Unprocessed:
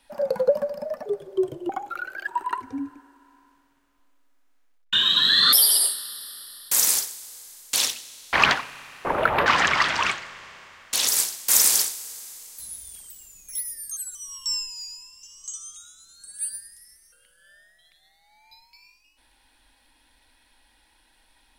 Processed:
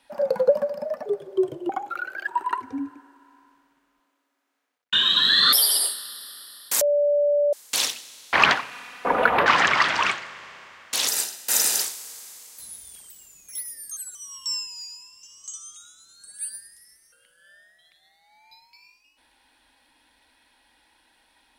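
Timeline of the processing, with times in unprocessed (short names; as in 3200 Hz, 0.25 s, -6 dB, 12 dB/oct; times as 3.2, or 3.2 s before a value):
6.81–7.53 bleep 582 Hz -18.5 dBFS
8.71–9.37 comb 4.1 ms
11.1–11.82 notch comb 1100 Hz
whole clip: HPF 160 Hz 6 dB/oct; high shelf 4700 Hz -5.5 dB; gain +2 dB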